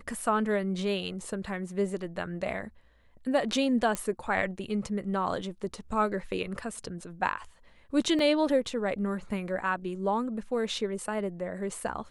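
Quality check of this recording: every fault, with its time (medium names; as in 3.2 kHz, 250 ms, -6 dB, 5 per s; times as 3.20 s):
3.95 s: pop -16 dBFS
8.19 s: dropout 2.1 ms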